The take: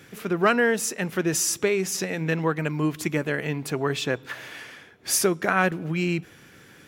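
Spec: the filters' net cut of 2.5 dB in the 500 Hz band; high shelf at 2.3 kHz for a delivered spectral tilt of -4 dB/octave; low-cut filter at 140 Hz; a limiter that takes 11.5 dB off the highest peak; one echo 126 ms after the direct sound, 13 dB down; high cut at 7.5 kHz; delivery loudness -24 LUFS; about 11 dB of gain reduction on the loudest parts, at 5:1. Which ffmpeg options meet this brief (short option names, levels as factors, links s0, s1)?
-af "highpass=140,lowpass=7500,equalizer=f=500:t=o:g=-3,highshelf=f=2300:g=-4,acompressor=threshold=0.0316:ratio=5,alimiter=level_in=1.33:limit=0.0631:level=0:latency=1,volume=0.75,aecho=1:1:126:0.224,volume=4.47"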